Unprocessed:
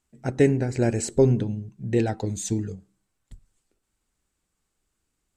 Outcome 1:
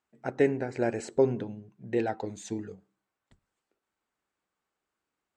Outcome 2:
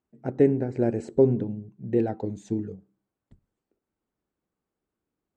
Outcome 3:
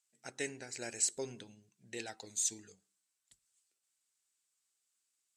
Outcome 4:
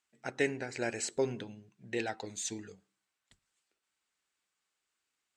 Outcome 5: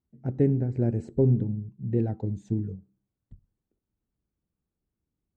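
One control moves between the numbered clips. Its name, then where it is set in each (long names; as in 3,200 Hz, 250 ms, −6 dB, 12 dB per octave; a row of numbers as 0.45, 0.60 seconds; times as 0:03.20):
resonant band-pass, frequency: 1,000, 370, 7,500, 2,600, 130 Hertz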